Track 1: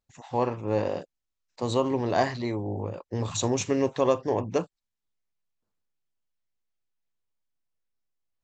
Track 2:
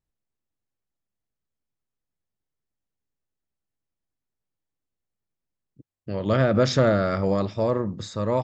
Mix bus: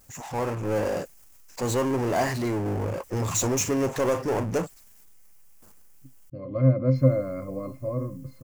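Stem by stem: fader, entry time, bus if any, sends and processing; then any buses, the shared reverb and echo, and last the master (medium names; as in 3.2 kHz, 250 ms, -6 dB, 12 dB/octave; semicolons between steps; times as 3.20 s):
-10.0 dB, 0.00 s, muted 6.30–6.95 s, no send, treble shelf 5.7 kHz +8 dB; power-law waveshaper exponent 0.5
+1.0 dB, 0.25 s, no send, pitch-class resonator C, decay 0.14 s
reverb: none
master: treble shelf 5 kHz +4 dB; level rider gain up to 4 dB; peaking EQ 3.8 kHz -10 dB 0.68 oct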